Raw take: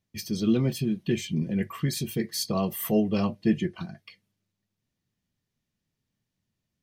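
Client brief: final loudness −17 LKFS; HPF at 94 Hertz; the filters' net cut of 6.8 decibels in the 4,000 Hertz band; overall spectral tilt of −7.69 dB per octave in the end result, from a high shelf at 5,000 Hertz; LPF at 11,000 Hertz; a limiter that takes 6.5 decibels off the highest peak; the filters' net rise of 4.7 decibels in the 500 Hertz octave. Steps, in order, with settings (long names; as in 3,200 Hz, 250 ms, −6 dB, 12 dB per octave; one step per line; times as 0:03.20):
high-pass filter 94 Hz
low-pass filter 11,000 Hz
parametric band 500 Hz +6.5 dB
parametric band 4,000 Hz −4.5 dB
high-shelf EQ 5,000 Hz −8 dB
level +11.5 dB
brickwall limiter −5 dBFS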